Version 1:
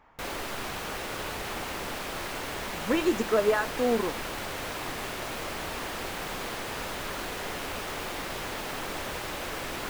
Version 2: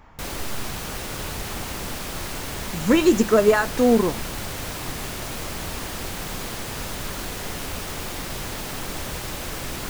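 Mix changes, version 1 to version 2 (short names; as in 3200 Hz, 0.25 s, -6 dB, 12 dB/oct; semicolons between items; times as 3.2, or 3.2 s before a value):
speech +6.5 dB; master: add tone controls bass +10 dB, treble +8 dB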